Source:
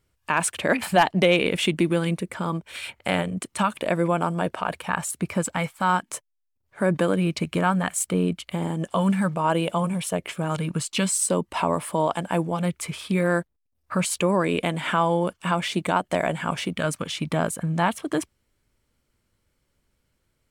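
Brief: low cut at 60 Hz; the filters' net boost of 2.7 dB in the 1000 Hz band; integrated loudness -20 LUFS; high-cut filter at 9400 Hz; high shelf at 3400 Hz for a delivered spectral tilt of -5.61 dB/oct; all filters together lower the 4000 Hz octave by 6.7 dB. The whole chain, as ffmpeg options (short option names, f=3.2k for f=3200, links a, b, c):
-af "highpass=60,lowpass=9.4k,equalizer=f=1k:t=o:g=4,highshelf=f=3.4k:g=-3.5,equalizer=f=4k:t=o:g=-8,volume=4dB"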